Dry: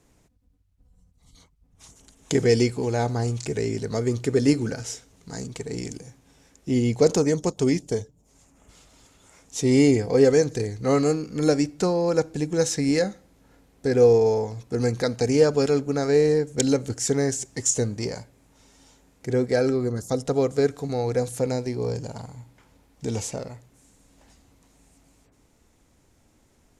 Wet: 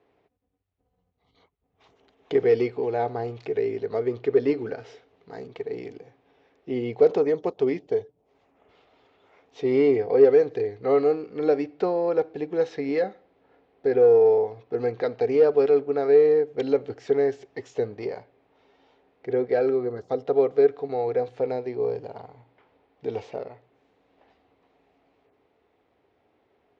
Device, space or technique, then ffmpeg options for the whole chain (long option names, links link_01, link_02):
overdrive pedal into a guitar cabinet: -filter_complex "[0:a]asplit=2[link_01][link_02];[link_02]highpass=frequency=720:poles=1,volume=13dB,asoftclip=type=tanh:threshold=-3.5dB[link_03];[link_01][link_03]amix=inputs=2:normalize=0,lowpass=frequency=1700:poles=1,volume=-6dB,highpass=82,equalizer=frequency=150:width_type=q:width=4:gain=-5,equalizer=frequency=220:width_type=q:width=4:gain=-4,equalizer=frequency=420:width_type=q:width=4:gain=9,equalizer=frequency=750:width_type=q:width=4:gain=8,equalizer=frequency=1500:width_type=q:width=4:gain=-3,lowpass=frequency=3800:width=0.5412,lowpass=frequency=3800:width=1.3066,equalizer=frequency=840:width=2.7:gain=-3.5,volume=-7dB"